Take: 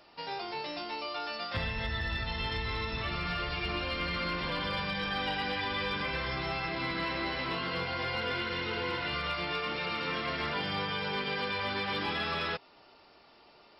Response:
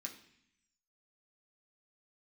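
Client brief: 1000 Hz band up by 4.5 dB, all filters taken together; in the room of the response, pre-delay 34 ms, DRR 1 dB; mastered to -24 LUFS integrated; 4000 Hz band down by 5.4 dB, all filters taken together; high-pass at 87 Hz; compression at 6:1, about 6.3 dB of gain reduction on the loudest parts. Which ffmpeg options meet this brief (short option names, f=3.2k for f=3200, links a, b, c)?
-filter_complex "[0:a]highpass=87,equalizer=f=1k:t=o:g=6,equalizer=f=4k:t=o:g=-8,acompressor=threshold=-35dB:ratio=6,asplit=2[a][b];[1:a]atrim=start_sample=2205,adelay=34[c];[b][c]afir=irnorm=-1:irlink=0,volume=2.5dB[d];[a][d]amix=inputs=2:normalize=0,volume=12dB"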